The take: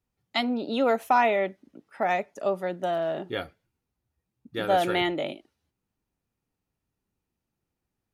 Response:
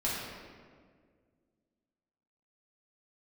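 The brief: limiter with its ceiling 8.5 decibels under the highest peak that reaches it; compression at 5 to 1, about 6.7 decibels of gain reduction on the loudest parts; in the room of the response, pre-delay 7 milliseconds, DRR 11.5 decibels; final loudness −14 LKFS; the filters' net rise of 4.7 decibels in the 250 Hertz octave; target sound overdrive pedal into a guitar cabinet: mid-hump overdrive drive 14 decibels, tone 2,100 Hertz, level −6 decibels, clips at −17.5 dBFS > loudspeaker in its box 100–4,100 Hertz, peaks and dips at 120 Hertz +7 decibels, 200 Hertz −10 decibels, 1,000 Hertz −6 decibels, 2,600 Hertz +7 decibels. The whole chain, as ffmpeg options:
-filter_complex "[0:a]equalizer=frequency=250:width_type=o:gain=8.5,acompressor=threshold=-23dB:ratio=5,alimiter=limit=-20.5dB:level=0:latency=1,asplit=2[link_01][link_02];[1:a]atrim=start_sample=2205,adelay=7[link_03];[link_02][link_03]afir=irnorm=-1:irlink=0,volume=-18.5dB[link_04];[link_01][link_04]amix=inputs=2:normalize=0,asplit=2[link_05][link_06];[link_06]highpass=frequency=720:poles=1,volume=14dB,asoftclip=type=tanh:threshold=-17.5dB[link_07];[link_05][link_07]amix=inputs=2:normalize=0,lowpass=frequency=2100:poles=1,volume=-6dB,highpass=100,equalizer=frequency=120:width_type=q:width=4:gain=7,equalizer=frequency=200:width_type=q:width=4:gain=-10,equalizer=frequency=1000:width_type=q:width=4:gain=-6,equalizer=frequency=2600:width_type=q:width=4:gain=7,lowpass=frequency=4100:width=0.5412,lowpass=frequency=4100:width=1.3066,volume=15.5dB"

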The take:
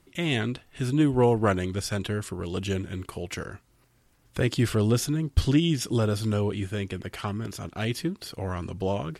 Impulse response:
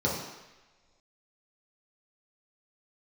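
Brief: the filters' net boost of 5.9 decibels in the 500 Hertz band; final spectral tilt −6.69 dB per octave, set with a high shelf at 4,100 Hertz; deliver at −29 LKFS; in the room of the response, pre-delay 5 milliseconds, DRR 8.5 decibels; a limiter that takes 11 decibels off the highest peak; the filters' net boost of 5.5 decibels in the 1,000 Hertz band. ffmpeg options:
-filter_complex "[0:a]equalizer=frequency=500:width_type=o:gain=6,equalizer=frequency=1000:width_type=o:gain=5.5,highshelf=frequency=4100:gain=-5.5,alimiter=limit=-16.5dB:level=0:latency=1,asplit=2[link_01][link_02];[1:a]atrim=start_sample=2205,adelay=5[link_03];[link_02][link_03]afir=irnorm=-1:irlink=0,volume=-19.5dB[link_04];[link_01][link_04]amix=inputs=2:normalize=0,volume=-3dB"

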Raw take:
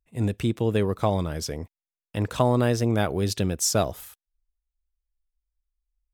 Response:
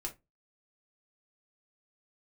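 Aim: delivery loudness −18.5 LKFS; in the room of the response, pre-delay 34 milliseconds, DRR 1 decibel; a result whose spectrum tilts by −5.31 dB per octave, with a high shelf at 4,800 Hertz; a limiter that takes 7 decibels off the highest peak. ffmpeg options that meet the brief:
-filter_complex "[0:a]highshelf=frequency=4800:gain=3.5,alimiter=limit=-13.5dB:level=0:latency=1,asplit=2[link_01][link_02];[1:a]atrim=start_sample=2205,adelay=34[link_03];[link_02][link_03]afir=irnorm=-1:irlink=0,volume=0dB[link_04];[link_01][link_04]amix=inputs=2:normalize=0,volume=4dB"

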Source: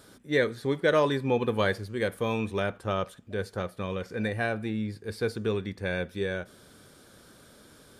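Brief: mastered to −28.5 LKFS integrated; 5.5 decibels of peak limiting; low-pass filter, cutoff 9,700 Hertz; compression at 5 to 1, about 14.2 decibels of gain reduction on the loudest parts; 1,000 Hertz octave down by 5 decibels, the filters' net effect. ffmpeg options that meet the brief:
ffmpeg -i in.wav -af "lowpass=9700,equalizer=frequency=1000:width_type=o:gain=-6.5,acompressor=threshold=-37dB:ratio=5,volume=14dB,alimiter=limit=-17.5dB:level=0:latency=1" out.wav

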